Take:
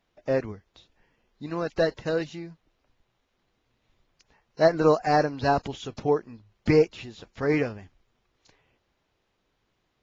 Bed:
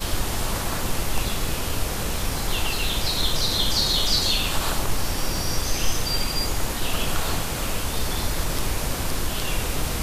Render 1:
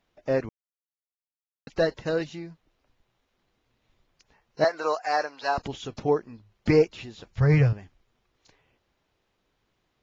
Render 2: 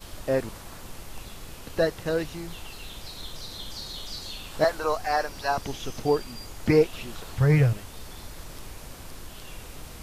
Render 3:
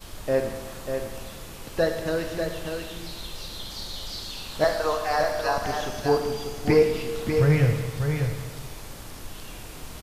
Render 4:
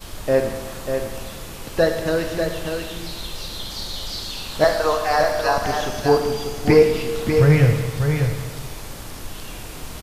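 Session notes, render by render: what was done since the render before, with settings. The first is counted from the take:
0.49–1.67 s: mute; 4.64–5.58 s: high-pass 740 Hz; 7.31–7.73 s: resonant low shelf 180 Hz +11 dB, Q 3
add bed -16 dB
delay 593 ms -6 dB; Schroeder reverb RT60 1.6 s, combs from 28 ms, DRR 5 dB
trim +5.5 dB

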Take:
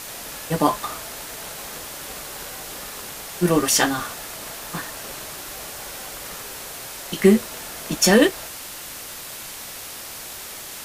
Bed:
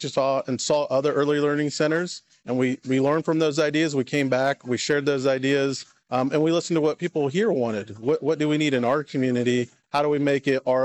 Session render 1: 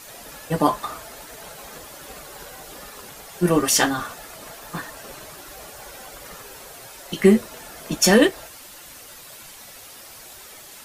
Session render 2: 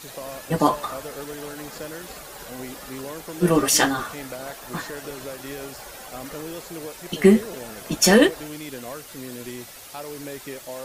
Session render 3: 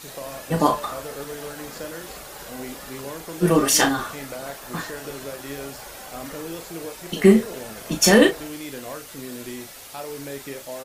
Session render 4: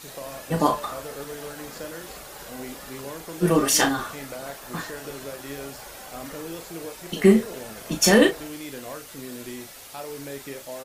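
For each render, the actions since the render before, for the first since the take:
noise reduction 9 dB, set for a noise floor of -36 dBFS
add bed -14.5 dB
doubling 36 ms -7.5 dB
trim -2 dB

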